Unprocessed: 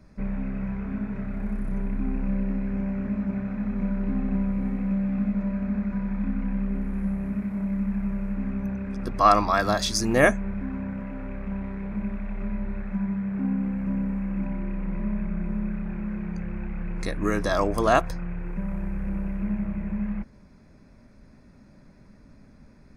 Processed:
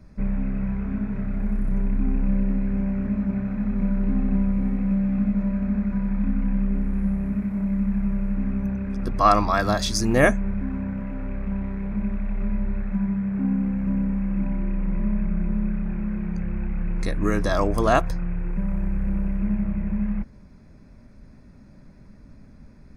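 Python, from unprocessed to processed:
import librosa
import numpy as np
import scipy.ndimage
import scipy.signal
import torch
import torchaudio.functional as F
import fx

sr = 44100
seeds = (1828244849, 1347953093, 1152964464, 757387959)

y = fx.low_shelf(x, sr, hz=190.0, db=6.5)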